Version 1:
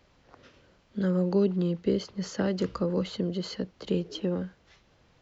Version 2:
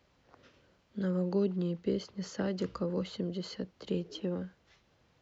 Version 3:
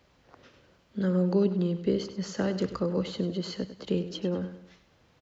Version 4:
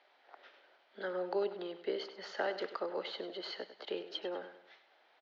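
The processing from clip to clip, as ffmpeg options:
ffmpeg -i in.wav -af "highpass=46,volume=-5.5dB" out.wav
ffmpeg -i in.wav -af "aecho=1:1:99|198|297|396:0.237|0.0996|0.0418|0.0176,volume=5dB" out.wav
ffmpeg -i in.wav -af "highpass=frequency=480:width=0.5412,highpass=frequency=480:width=1.3066,equalizer=frequency=500:width_type=q:width=4:gain=-9,equalizer=frequency=770:width_type=q:width=4:gain=3,equalizer=frequency=1100:width_type=q:width=4:gain=-7,equalizer=frequency=2700:width_type=q:width=4:gain=-5,lowpass=frequency=3800:width=0.5412,lowpass=frequency=3800:width=1.3066,volume=2dB" out.wav

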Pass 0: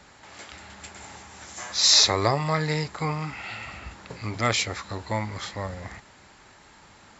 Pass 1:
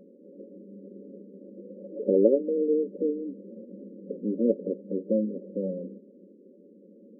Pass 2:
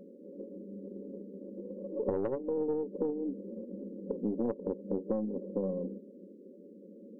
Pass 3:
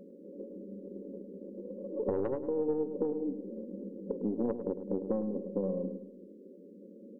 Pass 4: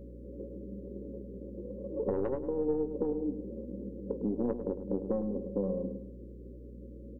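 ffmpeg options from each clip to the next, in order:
ffmpeg -i in.wav -af "afftfilt=real='re*between(b*sr/4096,180,580)':imag='im*between(b*sr/4096,180,580)':win_size=4096:overlap=0.75,volume=8dB" out.wav
ffmpeg -i in.wav -af "aeval=exprs='(tanh(5.01*val(0)+0.45)-tanh(0.45))/5.01':channel_layout=same,acompressor=threshold=-31dB:ratio=16,volume=3dB" out.wav
ffmpeg -i in.wav -filter_complex "[0:a]asplit=2[link_01][link_02];[link_02]adelay=104,lowpass=frequency=1200:poles=1,volume=-9.5dB,asplit=2[link_03][link_04];[link_04]adelay=104,lowpass=frequency=1200:poles=1,volume=0.43,asplit=2[link_05][link_06];[link_06]adelay=104,lowpass=frequency=1200:poles=1,volume=0.43,asplit=2[link_07][link_08];[link_08]adelay=104,lowpass=frequency=1200:poles=1,volume=0.43,asplit=2[link_09][link_10];[link_10]adelay=104,lowpass=frequency=1200:poles=1,volume=0.43[link_11];[link_01][link_03][link_05][link_07][link_09][link_11]amix=inputs=6:normalize=0" out.wav
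ffmpeg -i in.wav -filter_complex "[0:a]aeval=exprs='val(0)+0.00447*(sin(2*PI*60*n/s)+sin(2*PI*2*60*n/s)/2+sin(2*PI*3*60*n/s)/3+sin(2*PI*4*60*n/s)/4+sin(2*PI*5*60*n/s)/5)':channel_layout=same,asplit=2[link_01][link_02];[link_02]adelay=20,volume=-13dB[link_03];[link_01][link_03]amix=inputs=2:normalize=0" out.wav

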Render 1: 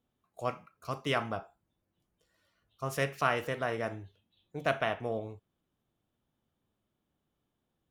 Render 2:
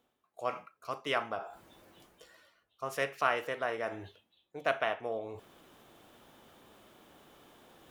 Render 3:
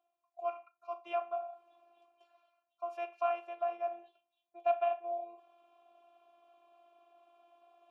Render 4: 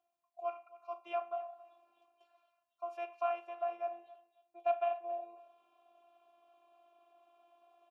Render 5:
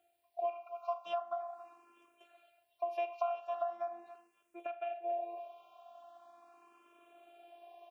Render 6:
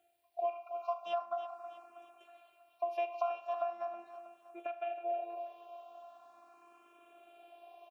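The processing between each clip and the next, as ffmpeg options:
ffmpeg -i in.wav -af "bass=frequency=250:gain=-15,treble=frequency=4000:gain=-4,areverse,acompressor=mode=upward:threshold=-36dB:ratio=2.5,areverse" out.wav
ffmpeg -i in.wav -filter_complex "[0:a]afftfilt=real='hypot(re,im)*cos(PI*b)':imag='0':win_size=512:overlap=0.75,asplit=3[link_01][link_02][link_03];[link_01]bandpass=frequency=730:width_type=q:width=8,volume=0dB[link_04];[link_02]bandpass=frequency=1090:width_type=q:width=8,volume=-6dB[link_05];[link_03]bandpass=frequency=2440:width_type=q:width=8,volume=-9dB[link_06];[link_04][link_05][link_06]amix=inputs=3:normalize=0,volume=6dB" out.wav
ffmpeg -i in.wav -af "aecho=1:1:271|542:0.112|0.0236,volume=-2dB" out.wav
ffmpeg -i in.wav -filter_complex "[0:a]acompressor=threshold=-43dB:ratio=12,asplit=2[link_01][link_02];[link_02]afreqshift=0.41[link_03];[link_01][link_03]amix=inputs=2:normalize=1,volume=12dB" out.wav
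ffmpeg -i in.wav -af "aecho=1:1:320|640|960|1280|1600:0.251|0.123|0.0603|0.0296|0.0145,volume=1dB" out.wav

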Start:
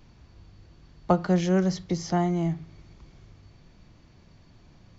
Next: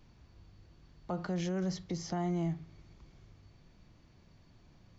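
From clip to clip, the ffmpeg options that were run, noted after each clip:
ffmpeg -i in.wav -af "alimiter=limit=-20dB:level=0:latency=1:release=34,volume=-6.5dB" out.wav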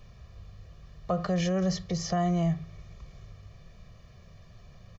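ffmpeg -i in.wav -af "aecho=1:1:1.7:0.87,volume=6dB" out.wav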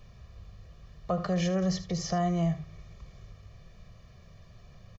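ffmpeg -i in.wav -af "aecho=1:1:76:0.2,volume=-1dB" out.wav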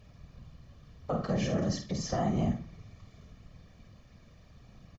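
ffmpeg -i in.wav -filter_complex "[0:a]afftfilt=real='hypot(re,im)*cos(2*PI*random(0))':imag='hypot(re,im)*sin(2*PI*random(1))':win_size=512:overlap=0.75,asplit=2[link_01][link_02];[link_02]adelay=49,volume=-7.5dB[link_03];[link_01][link_03]amix=inputs=2:normalize=0,volume=3dB" out.wav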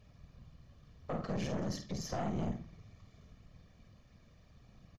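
ffmpeg -i in.wav -af "aeval=exprs='(tanh(25.1*val(0)+0.6)-tanh(0.6))/25.1':channel_layout=same,volume=-2.5dB" out.wav

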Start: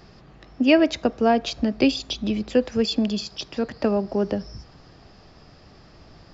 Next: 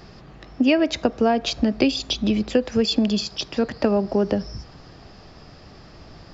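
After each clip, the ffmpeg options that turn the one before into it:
ffmpeg -i in.wav -af "acompressor=threshold=-19dB:ratio=6,volume=4.5dB" out.wav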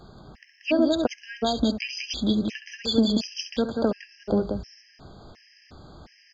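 ffmpeg -i in.wav -filter_complex "[0:a]asplit=2[link_01][link_02];[link_02]aecho=0:1:67.06|183.7:0.316|0.631[link_03];[link_01][link_03]amix=inputs=2:normalize=0,afftfilt=real='re*gt(sin(2*PI*1.4*pts/sr)*(1-2*mod(floor(b*sr/1024/1600),2)),0)':imag='im*gt(sin(2*PI*1.4*pts/sr)*(1-2*mod(floor(b*sr/1024/1600),2)),0)':win_size=1024:overlap=0.75,volume=-3dB" out.wav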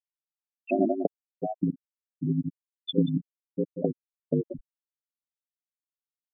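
ffmpeg -i in.wav -af "aeval=exprs='val(0)*sin(2*PI*51*n/s)':channel_layout=same,afftfilt=real='re*gte(hypot(re,im),0.224)':imag='im*gte(hypot(re,im),0.224)':win_size=1024:overlap=0.75" out.wav

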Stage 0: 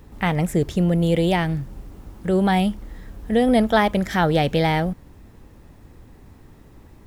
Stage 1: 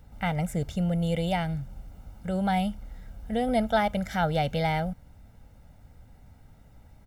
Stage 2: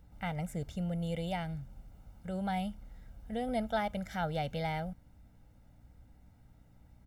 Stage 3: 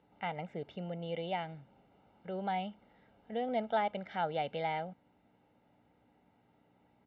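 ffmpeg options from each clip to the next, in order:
ffmpeg -i in.wav -af "aecho=1:1:1.4:0.71,volume=-9dB" out.wav
ffmpeg -i in.wav -af "aeval=exprs='val(0)+0.00224*(sin(2*PI*60*n/s)+sin(2*PI*2*60*n/s)/2+sin(2*PI*3*60*n/s)/3+sin(2*PI*4*60*n/s)/4+sin(2*PI*5*60*n/s)/5)':channel_layout=same,volume=-8.5dB" out.wav
ffmpeg -i in.wav -af "highpass=260,equalizer=frequency=390:width_type=q:width=4:gain=7,equalizer=frequency=890:width_type=q:width=4:gain=4,equalizer=frequency=1500:width_type=q:width=4:gain=-3,equalizer=frequency=2900:width_type=q:width=4:gain=3,lowpass=frequency=3300:width=0.5412,lowpass=frequency=3300:width=1.3066" out.wav

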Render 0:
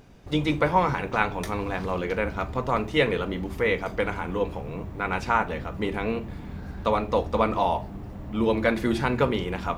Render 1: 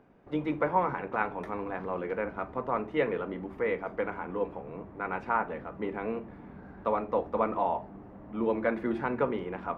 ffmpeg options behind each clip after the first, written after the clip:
ffmpeg -i in.wav -filter_complex "[0:a]acrossover=split=180 2100:gain=0.2 1 0.0631[link_01][link_02][link_03];[link_01][link_02][link_03]amix=inputs=3:normalize=0,volume=-4.5dB" out.wav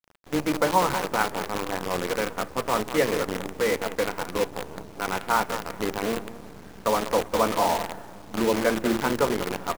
ffmpeg -i in.wav -filter_complex "[0:a]asplit=2[link_01][link_02];[link_02]adelay=194,lowpass=frequency=1800:poles=1,volume=-10dB,asplit=2[link_03][link_04];[link_04]adelay=194,lowpass=frequency=1800:poles=1,volume=0.46,asplit=2[link_05][link_06];[link_06]adelay=194,lowpass=frequency=1800:poles=1,volume=0.46,asplit=2[link_07][link_08];[link_08]adelay=194,lowpass=frequency=1800:poles=1,volume=0.46,asplit=2[link_09][link_10];[link_10]adelay=194,lowpass=frequency=1800:poles=1,volume=0.46[link_11];[link_01][link_03][link_05][link_07][link_09][link_11]amix=inputs=6:normalize=0,acrusher=bits=6:dc=4:mix=0:aa=0.000001,volume=5dB" out.wav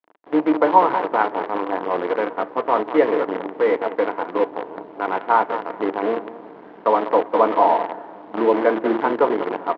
ffmpeg -i in.wav -af "highpass=280,equalizer=frequency=310:width_type=q:width=4:gain=9,equalizer=frequency=450:width_type=q:width=4:gain=5,equalizer=frequency=680:width_type=q:width=4:gain=6,equalizer=frequency=960:width_type=q:width=4:gain=7,equalizer=frequency=2500:width_type=q:width=4:gain=-5,lowpass=frequency=2800:width=0.5412,lowpass=frequency=2800:width=1.3066,volume=1.5dB" out.wav

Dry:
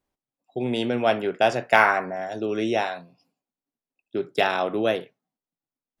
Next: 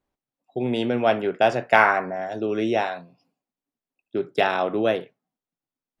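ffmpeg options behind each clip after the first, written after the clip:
ffmpeg -i in.wav -af "highshelf=frequency=4300:gain=-8.5,volume=1.5dB" out.wav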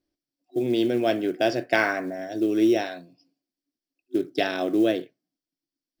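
ffmpeg -i in.wav -af "superequalizer=6b=3.55:9b=0.355:10b=0.447:13b=1.58:14b=3.55,acrusher=bits=8:mode=log:mix=0:aa=0.000001,volume=-4dB" out.wav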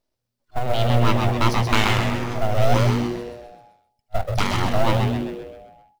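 ffmpeg -i in.wav -filter_complex "[0:a]aeval=exprs='abs(val(0))':channel_layout=same,asplit=2[link_01][link_02];[link_02]asplit=7[link_03][link_04][link_05][link_06][link_07][link_08][link_09];[link_03]adelay=130,afreqshift=-120,volume=-4dB[link_10];[link_04]adelay=260,afreqshift=-240,volume=-9.7dB[link_11];[link_05]adelay=390,afreqshift=-360,volume=-15.4dB[link_12];[link_06]adelay=520,afreqshift=-480,volume=-21dB[link_13];[link_07]adelay=650,afreqshift=-600,volume=-26.7dB[link_14];[link_08]adelay=780,afreqshift=-720,volume=-32.4dB[link_15];[link_09]adelay=910,afreqshift=-840,volume=-38.1dB[link_16];[link_10][link_11][link_12][link_13][link_14][link_15][link_16]amix=inputs=7:normalize=0[link_17];[link_01][link_17]amix=inputs=2:normalize=0,volume=4dB" out.wav

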